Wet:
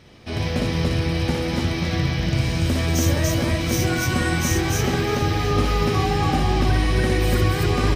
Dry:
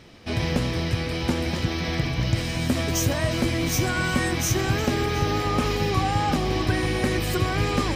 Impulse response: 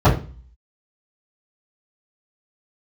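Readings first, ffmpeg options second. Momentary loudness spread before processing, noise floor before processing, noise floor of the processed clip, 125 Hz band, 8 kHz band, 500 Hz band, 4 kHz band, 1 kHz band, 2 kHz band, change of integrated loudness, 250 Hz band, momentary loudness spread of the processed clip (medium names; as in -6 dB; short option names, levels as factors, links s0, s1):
3 LU, -28 dBFS, -26 dBFS, +4.5 dB, +1.5 dB, +2.5 dB, +1.5 dB, +1.5 dB, +1.5 dB, +3.0 dB, +2.5 dB, 3 LU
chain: -filter_complex "[0:a]bandreject=f=7300:w=25,aecho=1:1:58.31|288.6:0.708|0.891,asplit=2[s0][s1];[1:a]atrim=start_sample=2205[s2];[s1][s2]afir=irnorm=-1:irlink=0,volume=0.00841[s3];[s0][s3]amix=inputs=2:normalize=0,volume=0.794"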